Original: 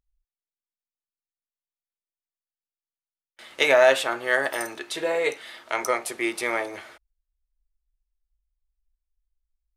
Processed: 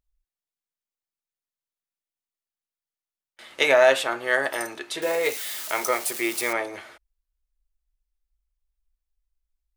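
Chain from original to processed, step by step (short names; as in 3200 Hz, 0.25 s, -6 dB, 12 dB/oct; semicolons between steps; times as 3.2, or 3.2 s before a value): 5.02–6.53 switching spikes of -24.5 dBFS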